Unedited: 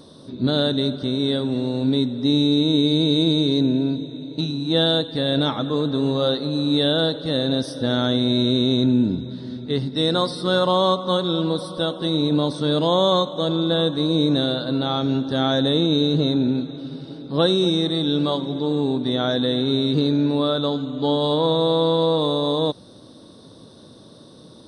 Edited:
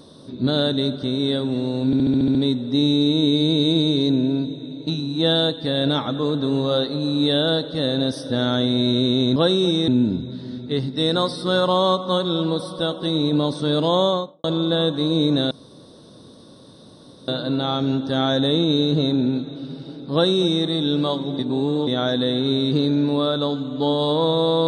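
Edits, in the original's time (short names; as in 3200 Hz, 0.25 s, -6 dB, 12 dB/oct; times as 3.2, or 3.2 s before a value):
1.86 stutter 0.07 s, 8 plays
12.98–13.43 studio fade out
14.5 insert room tone 1.77 s
17.35–17.87 copy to 8.87
18.61–19.09 reverse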